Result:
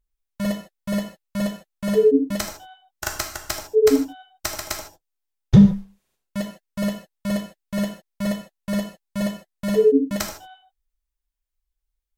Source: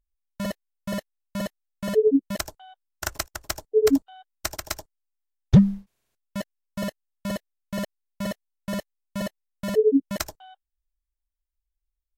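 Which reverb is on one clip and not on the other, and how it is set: gated-style reverb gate 180 ms falling, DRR 2 dB; trim +1 dB

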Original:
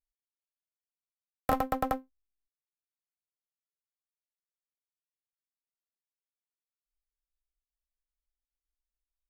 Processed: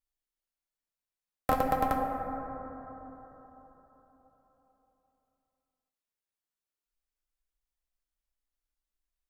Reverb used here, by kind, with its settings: plate-style reverb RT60 4.1 s, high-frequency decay 0.25×, DRR 1.5 dB

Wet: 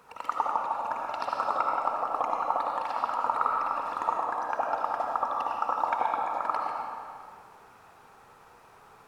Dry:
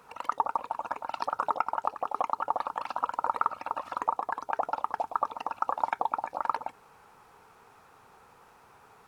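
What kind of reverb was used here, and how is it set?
algorithmic reverb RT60 2.1 s, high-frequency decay 0.85×, pre-delay 35 ms, DRR -1 dB; trim -1 dB

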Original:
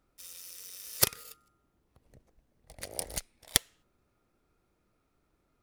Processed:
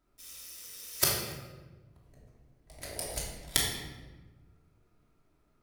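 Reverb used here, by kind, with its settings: simulated room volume 830 m³, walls mixed, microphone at 2.9 m; trim -4.5 dB

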